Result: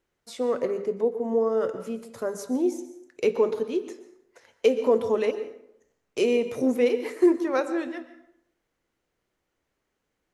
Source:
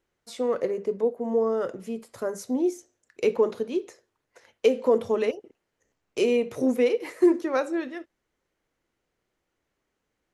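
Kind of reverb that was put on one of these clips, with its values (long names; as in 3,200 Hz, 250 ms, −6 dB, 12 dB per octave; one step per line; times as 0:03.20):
dense smooth reverb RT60 0.73 s, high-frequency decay 0.65×, pre-delay 110 ms, DRR 12 dB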